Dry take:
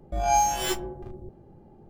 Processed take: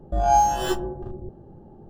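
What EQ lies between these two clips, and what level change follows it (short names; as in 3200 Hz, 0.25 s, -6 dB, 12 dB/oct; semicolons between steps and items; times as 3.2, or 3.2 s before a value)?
Butterworth band-stop 2200 Hz, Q 3.4; high shelf 2500 Hz -11.5 dB; +5.5 dB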